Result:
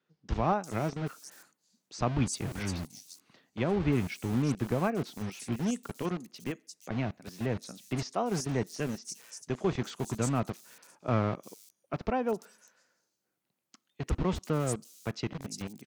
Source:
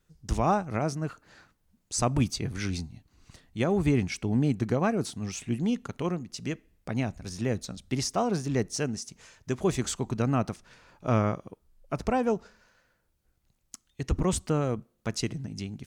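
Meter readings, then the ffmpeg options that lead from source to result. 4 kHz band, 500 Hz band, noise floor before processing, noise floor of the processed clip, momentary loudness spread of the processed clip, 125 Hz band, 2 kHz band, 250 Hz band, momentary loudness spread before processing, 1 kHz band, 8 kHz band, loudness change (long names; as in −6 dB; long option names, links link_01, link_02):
−5.0 dB, −3.5 dB, −73 dBFS, −83 dBFS, 12 LU, −3.5 dB, −2.5 dB, −3.5 dB, 11 LU, −3.0 dB, −5.0 dB, −3.5 dB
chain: -filter_complex "[0:a]acrossover=split=170[link_01][link_02];[link_01]acrusher=bits=5:mix=0:aa=0.000001[link_03];[link_03][link_02]amix=inputs=2:normalize=0,acrossover=split=5000[link_04][link_05];[link_05]adelay=350[link_06];[link_04][link_06]amix=inputs=2:normalize=0,volume=-3.5dB"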